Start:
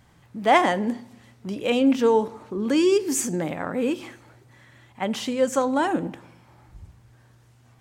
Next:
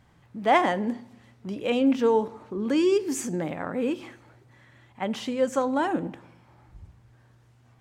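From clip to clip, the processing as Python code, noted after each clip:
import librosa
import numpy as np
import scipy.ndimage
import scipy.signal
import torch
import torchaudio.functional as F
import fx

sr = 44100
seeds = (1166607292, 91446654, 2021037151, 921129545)

y = fx.high_shelf(x, sr, hz=5100.0, db=-7.5)
y = F.gain(torch.from_numpy(y), -2.5).numpy()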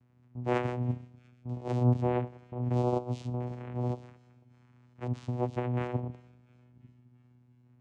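y = fx.vocoder(x, sr, bands=4, carrier='saw', carrier_hz=123.0)
y = fx.echo_wet_highpass(y, sr, ms=346, feedback_pct=61, hz=2800.0, wet_db=-20.0)
y = F.gain(torch.from_numpy(y), -5.5).numpy()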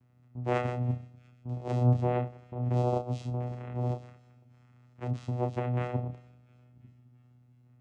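y = fx.doubler(x, sr, ms=31.0, db=-7.0)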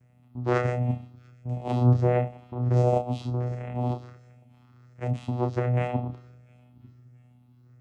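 y = fx.spec_ripple(x, sr, per_octave=0.53, drift_hz=1.4, depth_db=8)
y = F.gain(torch.from_numpy(y), 4.0).numpy()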